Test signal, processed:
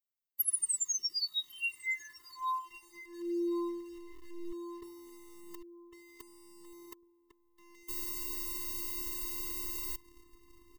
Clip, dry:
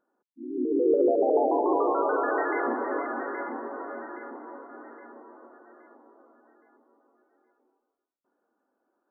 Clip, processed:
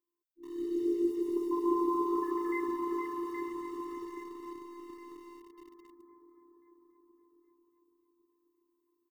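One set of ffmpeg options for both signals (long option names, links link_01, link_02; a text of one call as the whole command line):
ffmpeg -i in.wav -filter_complex "[0:a]asplit=2[link_01][link_02];[link_02]adelay=1102,lowpass=frequency=970:poles=1,volume=-10dB,asplit=2[link_03][link_04];[link_04]adelay=1102,lowpass=frequency=970:poles=1,volume=0.45,asplit=2[link_05][link_06];[link_06]adelay=1102,lowpass=frequency=970:poles=1,volume=0.45,asplit=2[link_07][link_08];[link_08]adelay=1102,lowpass=frequency=970:poles=1,volume=0.45,asplit=2[link_09][link_10];[link_10]adelay=1102,lowpass=frequency=970:poles=1,volume=0.45[link_11];[link_03][link_05][link_07][link_09][link_11]amix=inputs=5:normalize=0[link_12];[link_01][link_12]amix=inputs=2:normalize=0,afftfilt=real='hypot(re,im)*cos(PI*b)':imag='0':win_size=512:overlap=0.75,dynaudnorm=framelen=500:gausssize=5:maxgain=5.5dB,aemphasis=mode=production:type=50fm,asplit=2[link_13][link_14];[link_14]acrusher=bits=5:mix=0:aa=0.000001,volume=-9.5dB[link_15];[link_13][link_15]amix=inputs=2:normalize=0,afftfilt=real='re*eq(mod(floor(b*sr/1024/440),2),0)':imag='im*eq(mod(floor(b*sr/1024/440),2),0)':win_size=1024:overlap=0.75,volume=-9dB" out.wav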